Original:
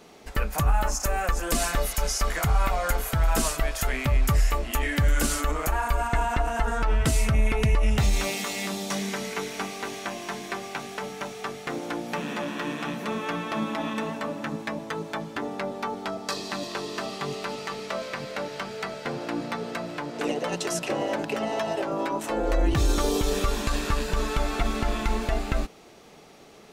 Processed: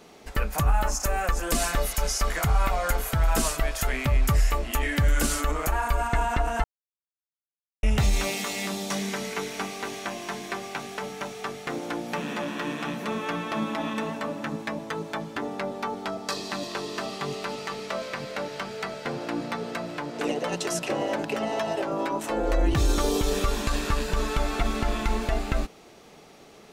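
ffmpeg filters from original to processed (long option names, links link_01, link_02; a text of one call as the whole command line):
ffmpeg -i in.wav -filter_complex "[0:a]asplit=3[link_01][link_02][link_03];[link_01]atrim=end=6.64,asetpts=PTS-STARTPTS,afade=type=out:start_time=6.636:duration=0.004:curve=hsin[link_04];[link_02]atrim=start=6.64:end=7.83,asetpts=PTS-STARTPTS,volume=0[link_05];[link_03]atrim=start=7.83,asetpts=PTS-STARTPTS,afade=type=in:duration=0.004:curve=hsin[link_06];[link_04][link_05][link_06]concat=n=3:v=0:a=1" out.wav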